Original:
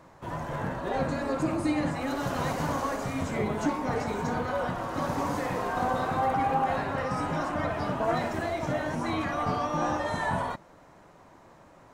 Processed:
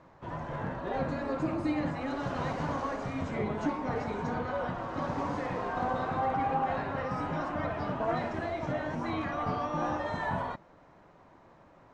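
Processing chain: distance through air 130 m; trim -3 dB

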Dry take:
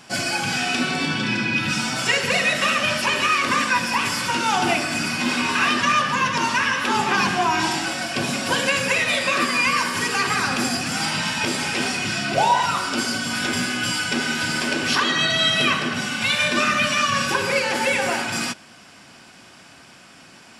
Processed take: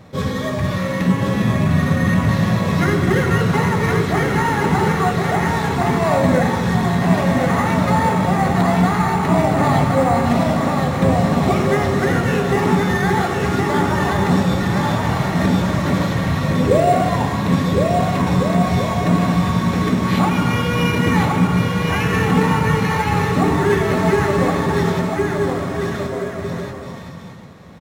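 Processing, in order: tilt shelf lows +8.5 dB, about 940 Hz; in parallel at -7.5 dB: sample-rate reducer 11 kHz, jitter 0%; on the sum: bouncing-ball echo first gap 790 ms, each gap 0.6×, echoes 5; speed mistake 45 rpm record played at 33 rpm; trim -1 dB

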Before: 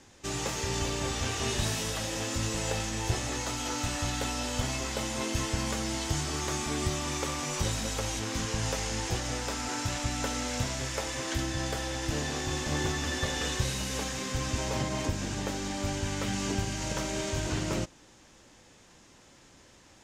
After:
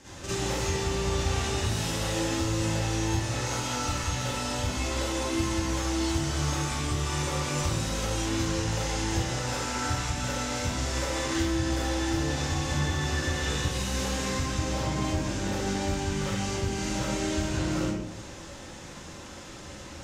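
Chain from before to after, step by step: compression, threshold -41 dBFS, peak gain reduction 17 dB; reverberation RT60 0.90 s, pre-delay 41 ms, DRR -11 dB; trim +2 dB

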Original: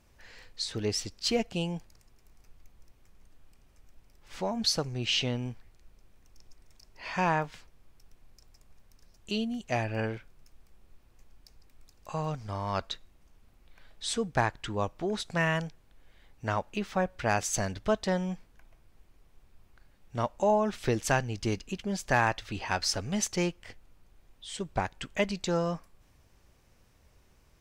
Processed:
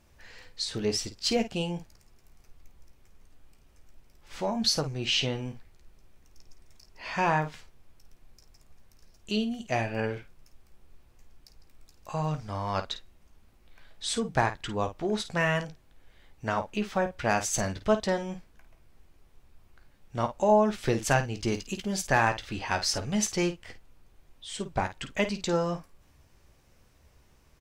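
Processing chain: 21.54–22.02 s: treble shelf 4.5 kHz +8 dB; early reflections 14 ms -9.5 dB, 52 ms -11 dB; trim +1 dB

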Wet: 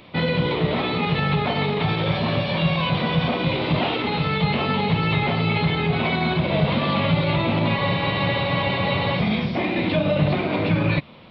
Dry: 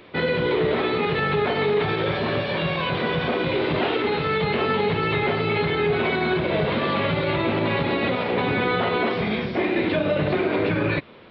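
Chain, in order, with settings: fifteen-band graphic EQ 160 Hz +4 dB, 400 Hz -11 dB, 1.6 kHz -9 dB; spectral freeze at 7.77 s, 1.42 s; trim +4 dB

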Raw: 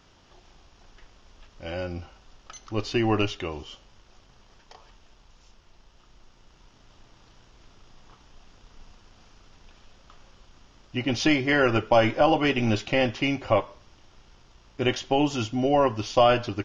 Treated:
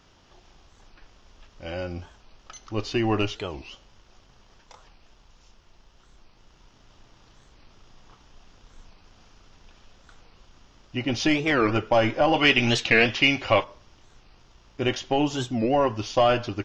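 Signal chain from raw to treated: saturation -9 dBFS, distortion -24 dB; 12.34–13.64 s: peaking EQ 3.1 kHz +10.5 dB 2.4 oct; warped record 45 rpm, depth 250 cents

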